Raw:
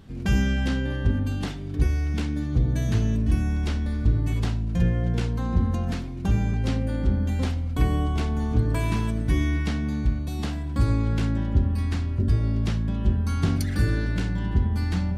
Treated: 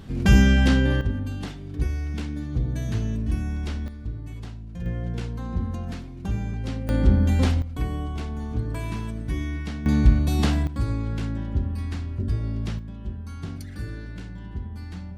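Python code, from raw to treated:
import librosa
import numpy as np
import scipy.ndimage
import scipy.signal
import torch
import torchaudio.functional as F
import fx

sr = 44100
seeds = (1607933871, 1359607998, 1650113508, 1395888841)

y = fx.gain(x, sr, db=fx.steps((0.0, 6.5), (1.01, -3.5), (3.88, -11.5), (4.86, -5.0), (6.89, 5.0), (7.62, -5.5), (9.86, 7.5), (10.67, -4.0), (12.79, -11.0)))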